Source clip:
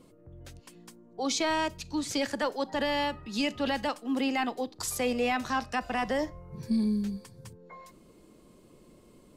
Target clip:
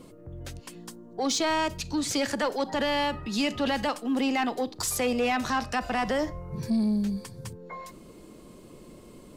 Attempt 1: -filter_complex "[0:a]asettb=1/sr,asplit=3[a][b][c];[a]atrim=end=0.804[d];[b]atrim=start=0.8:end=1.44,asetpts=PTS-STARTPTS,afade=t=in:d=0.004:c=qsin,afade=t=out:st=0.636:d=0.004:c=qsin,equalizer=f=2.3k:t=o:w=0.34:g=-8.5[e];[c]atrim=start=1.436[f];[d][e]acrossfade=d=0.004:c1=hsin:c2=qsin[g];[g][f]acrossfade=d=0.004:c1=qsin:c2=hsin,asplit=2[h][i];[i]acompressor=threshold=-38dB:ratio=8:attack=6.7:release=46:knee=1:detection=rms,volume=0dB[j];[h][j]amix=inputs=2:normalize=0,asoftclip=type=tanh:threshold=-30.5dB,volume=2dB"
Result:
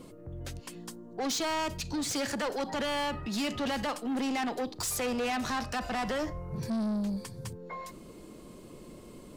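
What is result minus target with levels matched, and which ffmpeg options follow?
soft clip: distortion +11 dB
-filter_complex "[0:a]asettb=1/sr,asplit=3[a][b][c];[a]atrim=end=0.804[d];[b]atrim=start=0.8:end=1.44,asetpts=PTS-STARTPTS,afade=t=in:d=0.004:c=qsin,afade=t=out:st=0.636:d=0.004:c=qsin,equalizer=f=2.3k:t=o:w=0.34:g=-8.5[e];[c]atrim=start=1.436[f];[d][e]acrossfade=d=0.004:c1=hsin:c2=qsin[g];[g][f]acrossfade=d=0.004:c1=qsin:c2=hsin,asplit=2[h][i];[i]acompressor=threshold=-38dB:ratio=8:attack=6.7:release=46:knee=1:detection=rms,volume=0dB[j];[h][j]amix=inputs=2:normalize=0,asoftclip=type=tanh:threshold=-21dB,volume=2dB"

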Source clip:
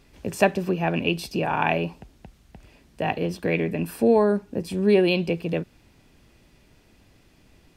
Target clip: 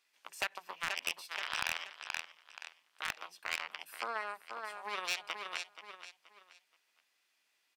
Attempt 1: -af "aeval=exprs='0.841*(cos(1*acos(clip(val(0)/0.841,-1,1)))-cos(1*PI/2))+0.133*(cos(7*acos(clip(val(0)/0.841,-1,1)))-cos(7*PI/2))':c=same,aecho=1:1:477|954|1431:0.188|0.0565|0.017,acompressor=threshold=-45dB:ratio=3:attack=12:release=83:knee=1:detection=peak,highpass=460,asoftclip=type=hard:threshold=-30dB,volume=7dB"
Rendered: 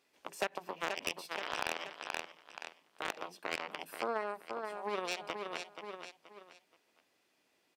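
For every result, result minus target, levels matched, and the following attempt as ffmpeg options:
500 Hz band +10.5 dB; compressor: peak gain reduction +4.5 dB
-af "aeval=exprs='0.841*(cos(1*acos(clip(val(0)/0.841,-1,1)))-cos(1*PI/2))+0.133*(cos(7*acos(clip(val(0)/0.841,-1,1)))-cos(7*PI/2))':c=same,aecho=1:1:477|954|1431:0.188|0.0565|0.017,acompressor=threshold=-45dB:ratio=3:attack=12:release=83:knee=1:detection=peak,highpass=1.3k,asoftclip=type=hard:threshold=-30dB,volume=7dB"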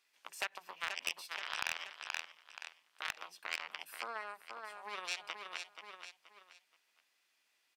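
compressor: peak gain reduction +4.5 dB
-af "aeval=exprs='0.841*(cos(1*acos(clip(val(0)/0.841,-1,1)))-cos(1*PI/2))+0.133*(cos(7*acos(clip(val(0)/0.841,-1,1)))-cos(7*PI/2))':c=same,aecho=1:1:477|954|1431:0.188|0.0565|0.017,acompressor=threshold=-38dB:ratio=3:attack=12:release=83:knee=1:detection=peak,highpass=1.3k,asoftclip=type=hard:threshold=-30dB,volume=7dB"

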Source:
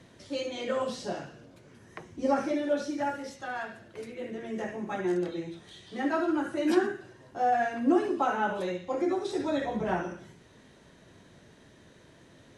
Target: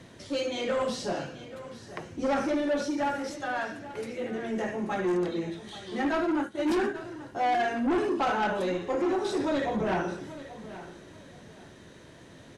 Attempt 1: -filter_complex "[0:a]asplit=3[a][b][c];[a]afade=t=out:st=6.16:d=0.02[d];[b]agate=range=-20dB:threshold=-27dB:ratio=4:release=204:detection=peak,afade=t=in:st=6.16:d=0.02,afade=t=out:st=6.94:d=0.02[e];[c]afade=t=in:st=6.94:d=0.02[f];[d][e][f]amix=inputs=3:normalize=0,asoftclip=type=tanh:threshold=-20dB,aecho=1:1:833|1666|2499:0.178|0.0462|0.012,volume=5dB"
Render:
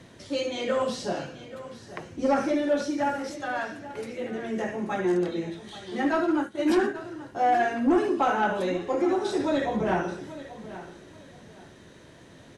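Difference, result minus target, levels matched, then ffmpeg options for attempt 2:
soft clip: distortion -7 dB
-filter_complex "[0:a]asplit=3[a][b][c];[a]afade=t=out:st=6.16:d=0.02[d];[b]agate=range=-20dB:threshold=-27dB:ratio=4:release=204:detection=peak,afade=t=in:st=6.16:d=0.02,afade=t=out:st=6.94:d=0.02[e];[c]afade=t=in:st=6.94:d=0.02[f];[d][e][f]amix=inputs=3:normalize=0,asoftclip=type=tanh:threshold=-27.5dB,aecho=1:1:833|1666|2499:0.178|0.0462|0.012,volume=5dB"

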